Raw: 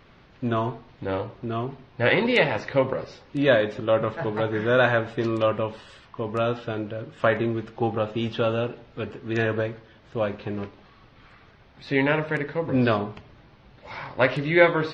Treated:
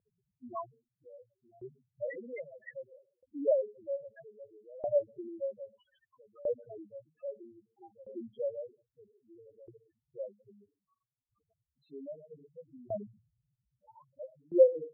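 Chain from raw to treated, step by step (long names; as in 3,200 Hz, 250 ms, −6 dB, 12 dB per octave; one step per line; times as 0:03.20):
0:12.30–0:14.25: each half-wave held at its own peak
spectral peaks only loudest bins 2
auto-filter band-pass saw up 0.62 Hz 490–4,300 Hz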